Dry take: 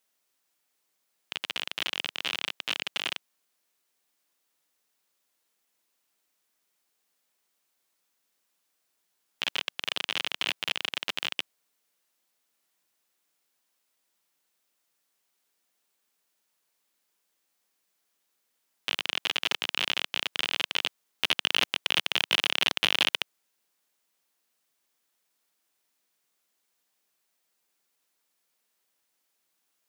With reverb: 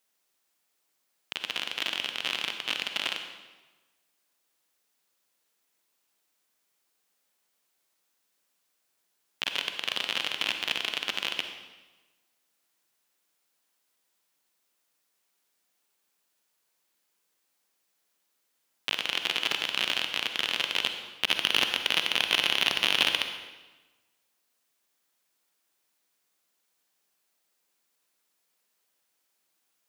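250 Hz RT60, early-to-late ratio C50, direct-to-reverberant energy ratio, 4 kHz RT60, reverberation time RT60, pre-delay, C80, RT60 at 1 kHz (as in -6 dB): 1.2 s, 6.5 dB, 6.0 dB, 1.0 s, 1.2 s, 40 ms, 8.0 dB, 1.2 s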